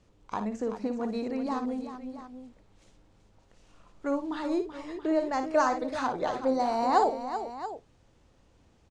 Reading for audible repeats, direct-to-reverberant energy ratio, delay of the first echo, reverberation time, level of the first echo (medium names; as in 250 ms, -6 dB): 3, no reverb, 57 ms, no reverb, -9.0 dB